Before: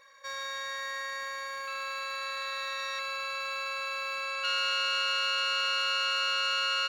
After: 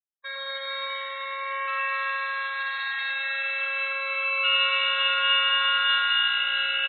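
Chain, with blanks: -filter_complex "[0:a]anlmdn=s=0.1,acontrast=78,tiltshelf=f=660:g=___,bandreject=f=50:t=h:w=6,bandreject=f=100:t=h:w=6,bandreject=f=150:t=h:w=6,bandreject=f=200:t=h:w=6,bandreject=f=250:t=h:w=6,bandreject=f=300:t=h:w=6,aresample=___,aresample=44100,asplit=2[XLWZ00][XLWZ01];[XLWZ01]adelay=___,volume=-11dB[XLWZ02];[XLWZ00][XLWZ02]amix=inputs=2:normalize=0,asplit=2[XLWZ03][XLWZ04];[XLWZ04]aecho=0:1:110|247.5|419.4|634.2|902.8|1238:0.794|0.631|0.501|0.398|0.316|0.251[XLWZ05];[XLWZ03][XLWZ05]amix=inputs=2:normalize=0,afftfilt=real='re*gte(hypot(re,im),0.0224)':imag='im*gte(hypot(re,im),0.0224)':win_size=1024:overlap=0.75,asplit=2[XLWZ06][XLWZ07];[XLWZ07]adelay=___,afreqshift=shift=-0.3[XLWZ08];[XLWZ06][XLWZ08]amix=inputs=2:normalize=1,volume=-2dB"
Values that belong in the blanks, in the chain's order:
-8, 8000, 18, 8.2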